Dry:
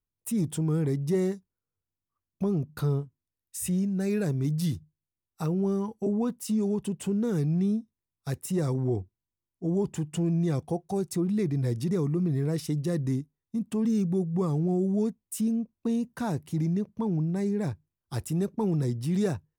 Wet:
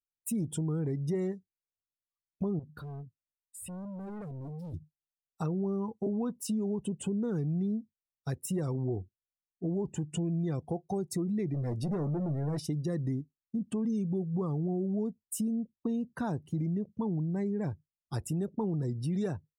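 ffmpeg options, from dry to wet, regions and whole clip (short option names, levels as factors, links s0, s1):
-filter_complex "[0:a]asettb=1/sr,asplit=3[s0][s1][s2];[s0]atrim=end=2.594[s3];[s1]atrim=start=2.59:end=4.74,asetpts=PTS-STARTPTS,afade=t=in:d=0.004:c=qsin,afade=t=out:st=2.146:d=0.004:c=qsin,equalizer=f=6200:w=6.5:g=-12.5,volume=53.1,asoftclip=hard,volume=0.0188,acompressor=threshold=0.00794:ratio=3:attack=3.2:release=140:knee=1:detection=peak[s4];[s2]atrim=start=4.736[s5];[s3][s4]acrossfade=d=0.004:c1=hsin:c2=qsin[s6];[s6][s5]acrossfade=d=0.004:c1=qsin:c2=hsin,asettb=1/sr,asplit=3[s7][s8][s9];[s7]atrim=end=11.544[s10];[s8]atrim=start=11.54:end=12.59,asetpts=PTS-STARTPTS,afade=t=in:d=0.004:c=qsin,afade=t=out:st=1.046:d=0.004:c=qsin,asoftclip=type=hard:threshold=0.0447,asplit=2[s11][s12];[s12]adelay=20,volume=0.224[s13];[s11][s13]amix=inputs=2:normalize=0,atrim=end_sample=46305[s14];[s9]atrim=start=12.586[s15];[s10][s14]acrossfade=d=0.004:c1=hsin:c2=qsin[s16];[s16][s15]acrossfade=d=0.004:c1=qsin:c2=hsin,afftdn=nr=19:nf=-46,acompressor=threshold=0.0316:ratio=3"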